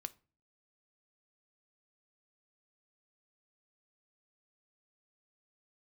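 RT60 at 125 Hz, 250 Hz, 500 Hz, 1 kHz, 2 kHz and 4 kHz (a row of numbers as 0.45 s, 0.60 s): 0.55 s, 0.55 s, 0.40 s, 0.35 s, 0.30 s, 0.25 s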